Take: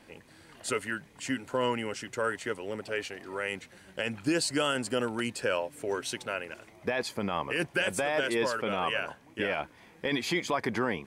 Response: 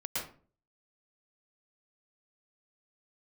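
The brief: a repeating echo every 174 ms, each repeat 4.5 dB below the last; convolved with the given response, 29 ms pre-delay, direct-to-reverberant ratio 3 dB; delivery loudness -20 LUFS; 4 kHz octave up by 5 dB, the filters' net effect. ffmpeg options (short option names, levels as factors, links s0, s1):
-filter_complex "[0:a]equalizer=f=4000:t=o:g=7,aecho=1:1:174|348|522|696|870|1044|1218|1392|1566:0.596|0.357|0.214|0.129|0.0772|0.0463|0.0278|0.0167|0.01,asplit=2[s0][s1];[1:a]atrim=start_sample=2205,adelay=29[s2];[s1][s2]afir=irnorm=-1:irlink=0,volume=0.447[s3];[s0][s3]amix=inputs=2:normalize=0,volume=2.24"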